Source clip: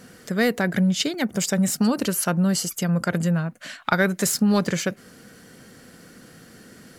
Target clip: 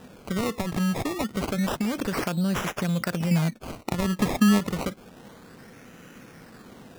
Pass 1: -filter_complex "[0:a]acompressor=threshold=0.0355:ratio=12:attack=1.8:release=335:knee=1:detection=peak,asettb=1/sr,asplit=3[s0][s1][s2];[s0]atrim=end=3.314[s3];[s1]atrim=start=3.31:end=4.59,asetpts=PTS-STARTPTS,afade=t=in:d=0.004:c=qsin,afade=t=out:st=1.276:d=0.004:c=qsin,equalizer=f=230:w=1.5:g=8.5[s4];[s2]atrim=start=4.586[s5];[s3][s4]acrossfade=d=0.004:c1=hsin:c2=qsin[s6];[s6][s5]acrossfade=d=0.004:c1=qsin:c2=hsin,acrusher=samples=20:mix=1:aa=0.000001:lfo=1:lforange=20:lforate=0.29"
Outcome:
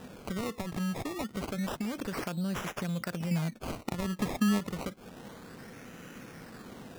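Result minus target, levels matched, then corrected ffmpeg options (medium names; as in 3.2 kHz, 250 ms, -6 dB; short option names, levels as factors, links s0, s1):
compression: peak gain reduction +8 dB
-filter_complex "[0:a]acompressor=threshold=0.0944:ratio=12:attack=1.8:release=335:knee=1:detection=peak,asettb=1/sr,asplit=3[s0][s1][s2];[s0]atrim=end=3.314[s3];[s1]atrim=start=3.31:end=4.59,asetpts=PTS-STARTPTS,afade=t=in:d=0.004:c=qsin,afade=t=out:st=1.276:d=0.004:c=qsin,equalizer=f=230:w=1.5:g=8.5[s4];[s2]atrim=start=4.586[s5];[s3][s4]acrossfade=d=0.004:c1=hsin:c2=qsin[s6];[s6][s5]acrossfade=d=0.004:c1=qsin:c2=hsin,acrusher=samples=20:mix=1:aa=0.000001:lfo=1:lforange=20:lforate=0.29"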